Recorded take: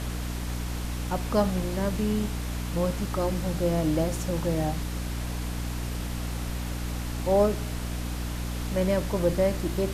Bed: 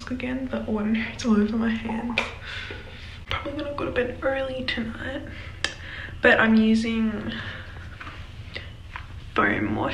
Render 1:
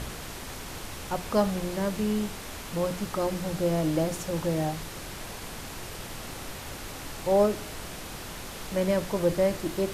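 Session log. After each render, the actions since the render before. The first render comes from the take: notches 60/120/180/240/300 Hz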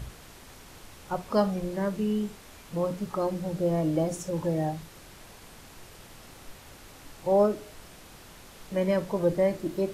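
noise print and reduce 10 dB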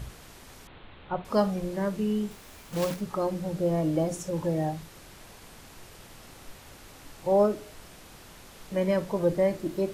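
0.67–1.25 steep low-pass 3900 Hz 72 dB/oct; 2.31–3.01 block floating point 3-bit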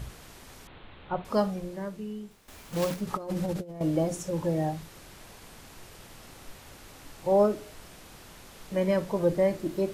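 1.25–2.48 fade out quadratic, to -12 dB; 3.07–3.81 negative-ratio compressor -32 dBFS, ratio -0.5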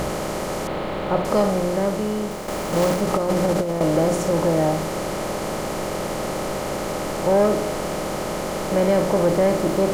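per-bin compression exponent 0.4; sample leveller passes 1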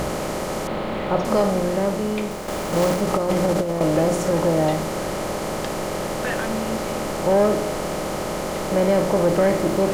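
add bed -11.5 dB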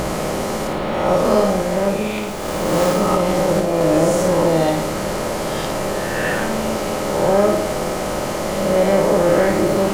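spectral swells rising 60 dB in 1.42 s; on a send: flutter echo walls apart 9.5 m, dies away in 0.57 s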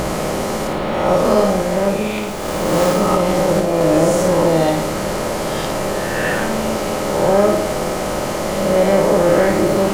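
gain +1.5 dB; limiter -2 dBFS, peak gain reduction 1 dB

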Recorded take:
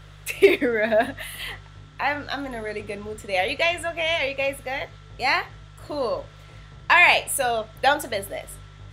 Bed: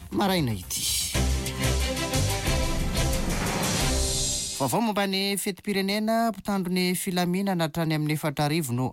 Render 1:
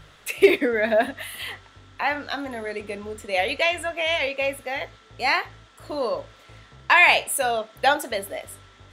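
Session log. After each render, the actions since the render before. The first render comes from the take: de-hum 50 Hz, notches 3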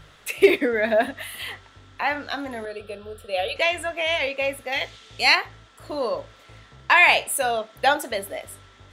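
2.65–3.56 fixed phaser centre 1400 Hz, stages 8; 4.72–5.35 band shelf 5400 Hz +9.5 dB 2.7 oct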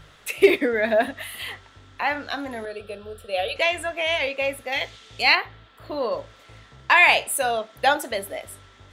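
5.22–6.12 band shelf 7700 Hz -12.5 dB 1.3 oct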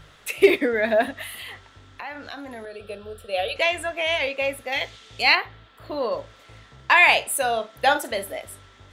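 1.34–2.88 compressor 3:1, threshold -34 dBFS; 7.47–8.33 doubler 44 ms -12 dB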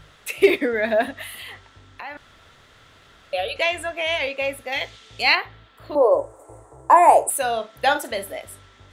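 2.17–3.33 room tone; 5.95–7.3 EQ curve 130 Hz 0 dB, 210 Hz -28 dB, 300 Hz +10 dB, 920 Hz +10 dB, 1400 Hz -6 dB, 2200 Hz -17 dB, 3300 Hz -27 dB, 5300 Hz -16 dB, 8400 Hz +14 dB, 13000 Hz +3 dB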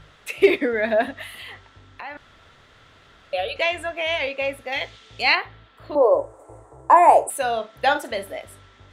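high shelf 7900 Hz -10.5 dB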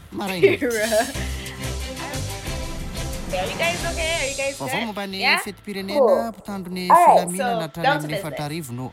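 add bed -3.5 dB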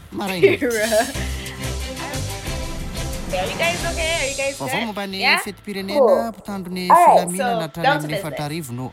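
gain +2 dB; limiter -2 dBFS, peak gain reduction 2.5 dB

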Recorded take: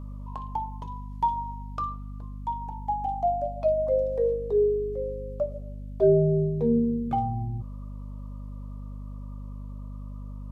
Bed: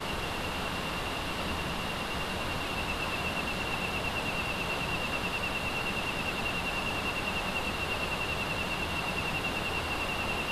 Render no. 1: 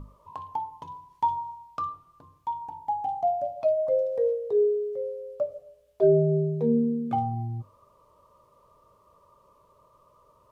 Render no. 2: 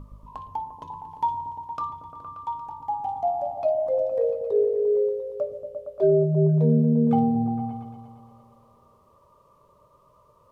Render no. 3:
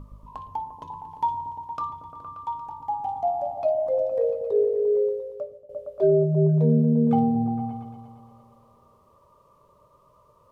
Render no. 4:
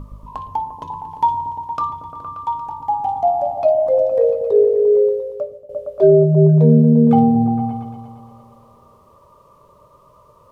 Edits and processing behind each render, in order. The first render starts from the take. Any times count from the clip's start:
notches 50/100/150/200/250/300 Hz
repeats that get brighter 0.116 s, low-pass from 200 Hz, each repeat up 1 oct, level 0 dB
5.12–5.69 fade out, to -18 dB
gain +8.5 dB; limiter -3 dBFS, peak gain reduction 1 dB

